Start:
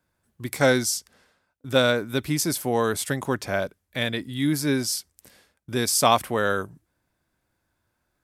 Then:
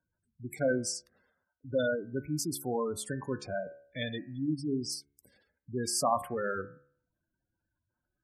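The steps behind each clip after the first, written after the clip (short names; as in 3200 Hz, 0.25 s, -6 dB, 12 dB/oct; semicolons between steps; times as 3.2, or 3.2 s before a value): spectral gate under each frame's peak -10 dB strong; de-hum 70.99 Hz, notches 35; gain -7.5 dB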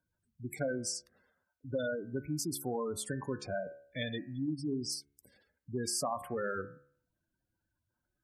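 compressor, threshold -31 dBFS, peak gain reduction 8.5 dB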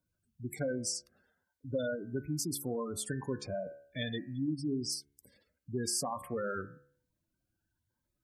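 cascading phaser rising 1.1 Hz; gain +1.5 dB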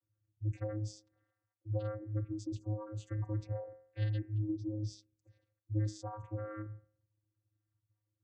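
vocoder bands 16, square 106 Hz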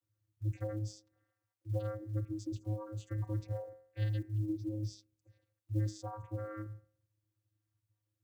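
block floating point 7-bit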